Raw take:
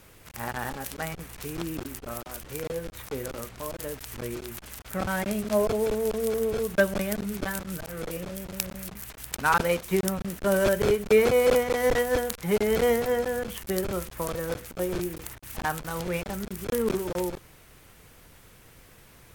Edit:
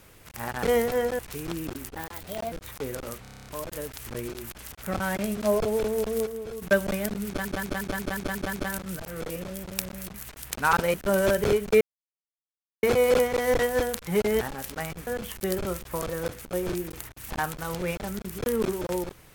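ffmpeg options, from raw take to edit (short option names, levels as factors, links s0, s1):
-filter_complex "[0:a]asplit=26[s0][s1][s2][s3][s4][s5][s6][s7][s8][s9][s10][s11][s12][s13][s14][s15][s16][s17][s18][s19][s20][s21][s22][s23][s24][s25];[s0]atrim=end=0.632[s26];[s1]atrim=start=12.768:end=13.332[s27];[s2]atrim=start=1.288:end=2.054[s28];[s3]atrim=start=2.05:end=2.83,asetpts=PTS-STARTPTS,asetrate=60417,aresample=44100,atrim=end_sample=25108,asetpts=PTS-STARTPTS[s29];[s4]atrim=start=2.826:end=3.562[s30];[s5]atrim=start=3.528:end=3.562[s31];[s6]atrim=start=3.528:end=3.562[s32];[s7]atrim=start=3.528:end=3.562[s33];[s8]atrim=start=3.528:end=3.562[s34];[s9]atrim=start=3.528:end=3.562[s35];[s10]atrim=start=3.528:end=3.562[s36];[s11]atrim=start=3.528:end=3.562[s37];[s12]atrim=start=3.528:end=6.332[s38];[s13]atrim=start=6.328:end=6.692,asetpts=PTS-STARTPTS,volume=0.376[s39];[s14]atrim=start=6.688:end=7.522[s40];[s15]atrim=start=7.338:end=7.522[s41];[s16]atrim=start=7.338:end=7.522[s42];[s17]atrim=start=7.338:end=7.522[s43];[s18]atrim=start=7.338:end=7.522[s44];[s19]atrim=start=7.338:end=7.522[s45];[s20]atrim=start=7.338:end=7.522[s46];[s21]atrim=start=7.338:end=9.752[s47];[s22]atrim=start=10.318:end=11.19,asetpts=PTS-STARTPTS,afade=t=out:st=0.868:d=0.004:c=hsin,apad=pad_dur=1.02[s48];[s23]atrim=start=11.19:end=12.772,asetpts=PTS-STARTPTS,afade=t=in:d=0.004:c=hsin[s49];[s24]atrim=start=0.628:end=1.292[s50];[s25]atrim=start=13.328[s51];[s26][s27]acrossfade=d=0.004:c1=hsin:c2=hsin[s52];[s52][s28]acrossfade=d=0.004:c1=hsin:c2=hsin[s53];[s53][s29]acrossfade=d=0.004:c1=hsin:c2=hsin[s54];[s54][s30]acrossfade=d=0.004:c1=hsin:c2=hsin[s55];[s55][s31]acrossfade=d=0.004:c1=hsin:c2=hsin[s56];[s56][s32]acrossfade=d=0.004:c1=hsin:c2=hsin[s57];[s57][s33]acrossfade=d=0.004:c1=hsin:c2=hsin[s58];[s58][s34]acrossfade=d=0.004:c1=hsin:c2=hsin[s59];[s59][s35]acrossfade=d=0.004:c1=hsin:c2=hsin[s60];[s60][s36]acrossfade=d=0.004:c1=hsin:c2=hsin[s61];[s61][s37]acrossfade=d=0.004:c1=hsin:c2=hsin[s62];[s62][s38]acrossfade=d=0.004:c1=hsin:c2=hsin[s63];[s63][s39]acrossfade=d=0.004:c1=hsin:c2=hsin[s64];[s64][s40]acrossfade=d=0.004:c1=hsin:c2=hsin[s65];[s65][s41]acrossfade=d=0.004:c1=hsin:c2=hsin[s66];[s66][s42]acrossfade=d=0.004:c1=hsin:c2=hsin[s67];[s67][s43]acrossfade=d=0.004:c1=hsin:c2=hsin[s68];[s68][s44]acrossfade=d=0.004:c1=hsin:c2=hsin[s69];[s69][s45]acrossfade=d=0.004:c1=hsin:c2=hsin[s70];[s70][s46]acrossfade=d=0.004:c1=hsin:c2=hsin[s71];[s71][s47]acrossfade=d=0.004:c1=hsin:c2=hsin[s72];[s48][s49]concat=n=2:v=0:a=1[s73];[s72][s73]acrossfade=d=0.004:c1=hsin:c2=hsin[s74];[s74][s50]acrossfade=d=0.004:c1=hsin:c2=hsin[s75];[s75][s51]acrossfade=d=0.004:c1=hsin:c2=hsin"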